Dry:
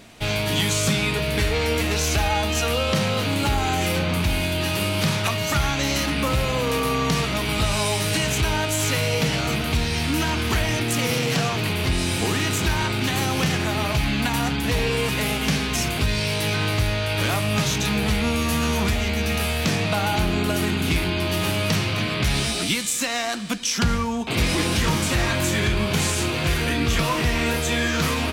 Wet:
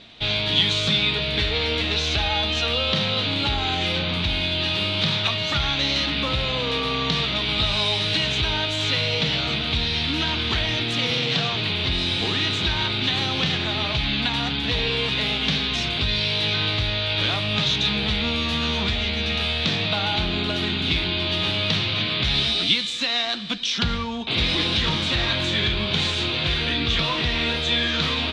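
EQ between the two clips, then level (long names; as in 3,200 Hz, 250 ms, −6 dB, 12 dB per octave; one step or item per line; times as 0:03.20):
low-pass with resonance 3,700 Hz, resonance Q 5.1
−4.0 dB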